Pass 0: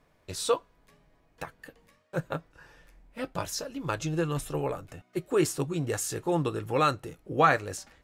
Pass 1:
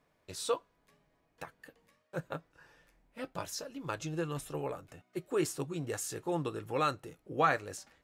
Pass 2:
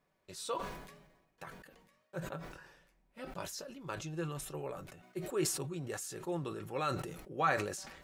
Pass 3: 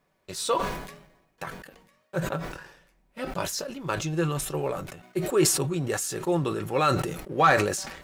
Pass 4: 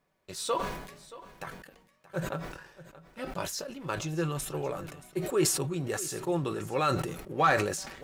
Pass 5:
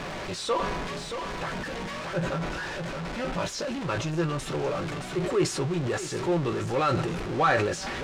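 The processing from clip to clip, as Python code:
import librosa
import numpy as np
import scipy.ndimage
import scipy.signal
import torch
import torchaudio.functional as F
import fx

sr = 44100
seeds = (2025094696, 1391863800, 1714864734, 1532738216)

y1 = fx.low_shelf(x, sr, hz=69.0, db=-11.0)
y1 = y1 * librosa.db_to_amplitude(-6.0)
y2 = y1 + 0.36 * np.pad(y1, (int(5.3 * sr / 1000.0), 0))[:len(y1)]
y2 = fx.sustainer(y2, sr, db_per_s=54.0)
y2 = y2 * librosa.db_to_amplitude(-5.0)
y3 = fx.leveller(y2, sr, passes=1)
y3 = y3 * librosa.db_to_amplitude(8.5)
y4 = y3 + 10.0 ** (-17.5 / 20.0) * np.pad(y3, (int(626 * sr / 1000.0), 0))[:len(y3)]
y4 = y4 * librosa.db_to_amplitude(-4.5)
y5 = y4 + 0.5 * 10.0 ** (-28.0 / 20.0) * np.sign(y4)
y5 = fx.air_absorb(y5, sr, metres=97.0)
y5 = fx.doubler(y5, sr, ms=17.0, db=-12)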